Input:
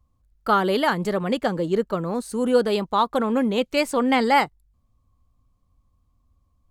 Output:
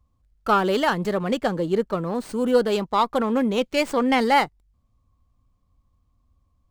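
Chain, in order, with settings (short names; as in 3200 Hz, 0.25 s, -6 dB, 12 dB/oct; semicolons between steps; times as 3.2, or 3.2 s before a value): running maximum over 3 samples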